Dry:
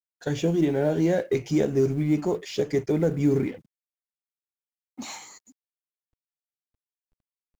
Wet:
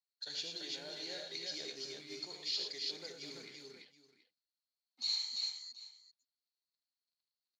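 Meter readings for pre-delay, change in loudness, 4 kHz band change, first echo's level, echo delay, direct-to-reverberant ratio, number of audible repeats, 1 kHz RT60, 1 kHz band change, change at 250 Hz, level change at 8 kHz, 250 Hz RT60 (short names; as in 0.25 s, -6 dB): none, -15.0 dB, +6.5 dB, -6.5 dB, 76 ms, none, 4, none, -21.0 dB, -31.0 dB, n/a, none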